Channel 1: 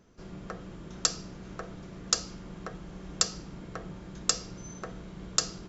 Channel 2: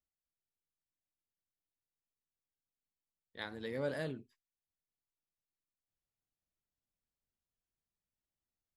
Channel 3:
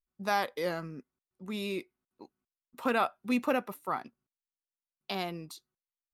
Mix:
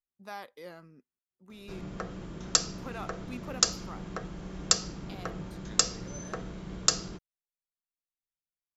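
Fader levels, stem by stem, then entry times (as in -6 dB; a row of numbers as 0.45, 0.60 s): +2.5, -12.5, -13.0 dB; 1.50, 2.30, 0.00 s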